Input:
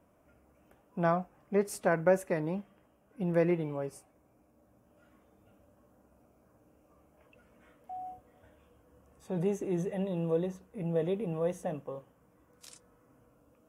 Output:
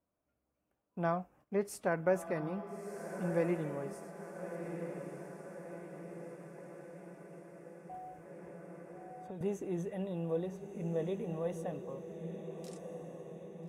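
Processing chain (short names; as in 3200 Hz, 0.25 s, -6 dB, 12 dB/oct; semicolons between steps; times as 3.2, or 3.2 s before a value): gate -57 dBFS, range -15 dB; diffused feedback echo 1.344 s, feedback 61%, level -8 dB; 7.94–9.41 three-band squash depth 100%; gain -5 dB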